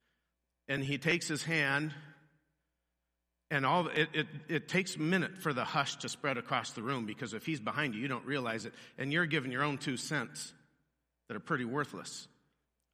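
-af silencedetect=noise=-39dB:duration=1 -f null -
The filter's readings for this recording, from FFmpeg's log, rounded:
silence_start: 1.93
silence_end: 3.51 | silence_duration: 1.58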